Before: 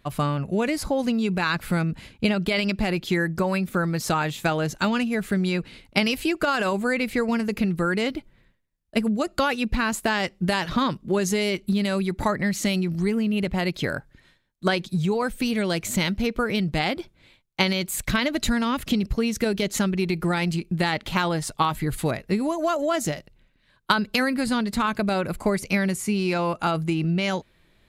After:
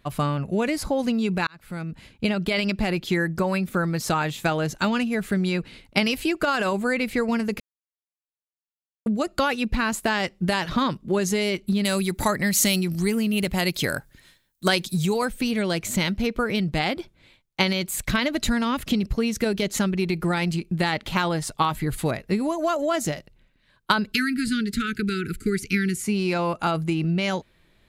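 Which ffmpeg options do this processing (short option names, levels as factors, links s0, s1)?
-filter_complex "[0:a]asplit=3[s0][s1][s2];[s0]afade=t=out:st=11.84:d=0.02[s3];[s1]aemphasis=mode=production:type=75kf,afade=t=in:st=11.84:d=0.02,afade=t=out:st=15.24:d=0.02[s4];[s2]afade=t=in:st=15.24:d=0.02[s5];[s3][s4][s5]amix=inputs=3:normalize=0,asettb=1/sr,asplit=3[s6][s7][s8];[s6]atrim=end=24.124[s9];[s7]atrim=start=24.12:end=26.04,asetpts=PTS-STARTPTS,afade=t=in:d=0.004:c=qsin,afade=t=out:st=1.916:d=0.004:c=qsin,asuperstop=centerf=760:order=20:qfactor=0.88[s10];[s8]atrim=start=26.036[s11];[s9][s10]acrossfade=d=0.004:c1=hsin:c2=qsin[s12];[s12][s11]acrossfade=d=0.004:c1=qsin:c2=hsin,asplit=4[s13][s14][s15][s16];[s13]atrim=end=1.47,asetpts=PTS-STARTPTS,afade=t=out:st=1.466:d=0.004:c=hsin[s17];[s14]atrim=start=1.47:end=7.6,asetpts=PTS-STARTPTS,afade=t=in:d=1.32:c=qsin,afade=t=out:st=6.126:d=0.004:c=hsin[s18];[s15]atrim=start=7.6:end=9.06,asetpts=PTS-STARTPTS,volume=0[s19];[s16]atrim=start=9.06,asetpts=PTS-STARTPTS,afade=t=in:d=0.004:c=hsin[s20];[s17][s18][s19][s20]concat=n=4:v=0:a=1"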